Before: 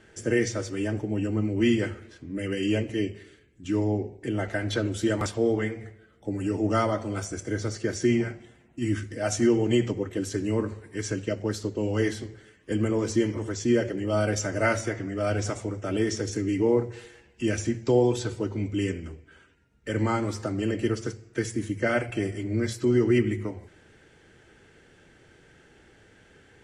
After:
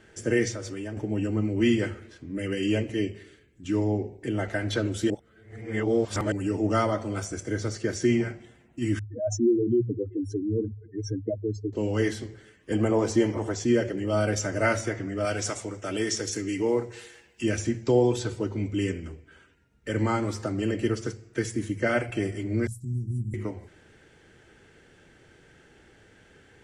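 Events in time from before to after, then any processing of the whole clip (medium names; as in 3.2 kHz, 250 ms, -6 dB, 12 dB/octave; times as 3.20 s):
0.51–0.97 s: compression, threshold -31 dBFS
5.10–6.32 s: reverse
8.99–11.73 s: spectral contrast enhancement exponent 3.3
12.73–13.65 s: peaking EQ 750 Hz +11.5 dB 0.87 oct
15.25–17.44 s: tilt EQ +2 dB/octave
22.67–23.34 s: Chebyshev band-stop 160–9100 Hz, order 3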